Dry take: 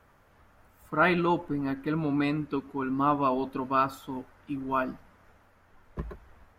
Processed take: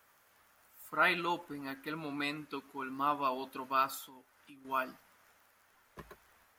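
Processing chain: crackle 19 per s -58 dBFS; 3.97–4.65 s: compression 2.5:1, threshold -46 dBFS, peak gain reduction 11 dB; tilt EQ +4 dB/octave; trim -6 dB

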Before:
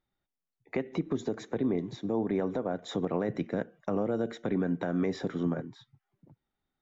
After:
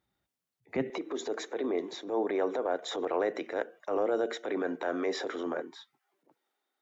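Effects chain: high-pass 48 Hz 24 dB/octave, from 0.90 s 360 Hz; transient shaper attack -8 dB, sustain +2 dB; trim +5 dB

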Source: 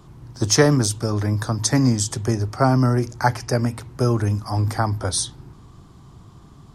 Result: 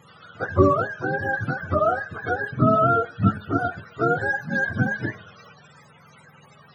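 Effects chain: spectrum inverted on a logarithmic axis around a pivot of 410 Hz; de-hum 210.2 Hz, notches 20

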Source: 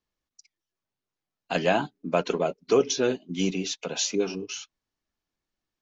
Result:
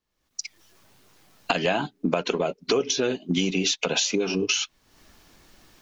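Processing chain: recorder AGC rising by 49 dB/s; dynamic bell 2.9 kHz, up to +4 dB, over -41 dBFS, Q 0.97; compression 2.5:1, threshold -22 dBFS, peak gain reduction 5.5 dB; trim +1.5 dB

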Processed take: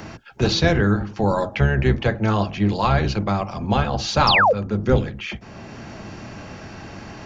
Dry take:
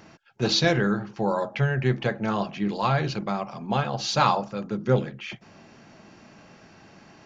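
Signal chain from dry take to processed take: octave divider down 1 oct, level -1 dB; painted sound fall, 4.27–4.53 s, 440–5700 Hz -17 dBFS; three bands compressed up and down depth 40%; trim +4 dB

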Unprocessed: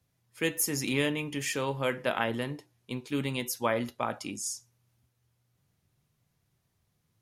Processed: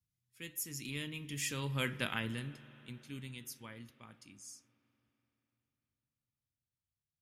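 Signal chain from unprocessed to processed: Doppler pass-by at 1.89 s, 10 m/s, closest 2.9 m; amplifier tone stack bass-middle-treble 6-0-2; spring tank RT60 3.9 s, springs 42/49 ms, chirp 25 ms, DRR 16.5 dB; trim +17 dB

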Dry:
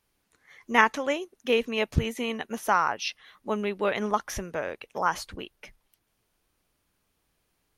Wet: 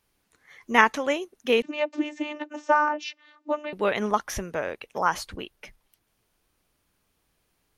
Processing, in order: 1.62–3.73 s: vocoder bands 32, saw 299 Hz; trim +2 dB

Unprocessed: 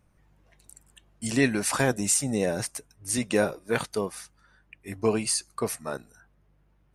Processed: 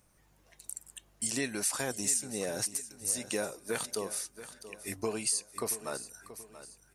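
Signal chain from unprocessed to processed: tone controls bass -6 dB, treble +11 dB; compression 3:1, threshold -33 dBFS, peak gain reduction 17 dB; hard clipper -18 dBFS, distortion -36 dB; feedback delay 680 ms, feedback 39%, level -14 dB

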